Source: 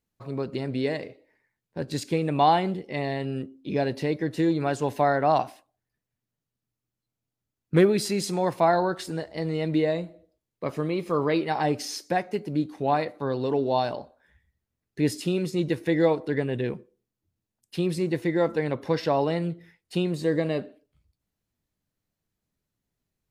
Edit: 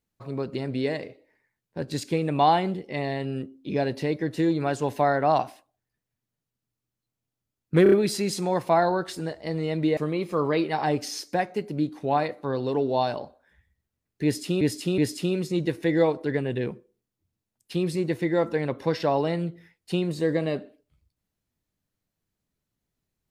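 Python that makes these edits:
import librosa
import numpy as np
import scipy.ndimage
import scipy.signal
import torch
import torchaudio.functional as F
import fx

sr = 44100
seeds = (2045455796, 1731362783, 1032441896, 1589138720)

y = fx.edit(x, sr, fx.stutter(start_s=7.83, slice_s=0.03, count=4),
    fx.cut(start_s=9.88, length_s=0.86),
    fx.repeat(start_s=15.01, length_s=0.37, count=3), tone=tone)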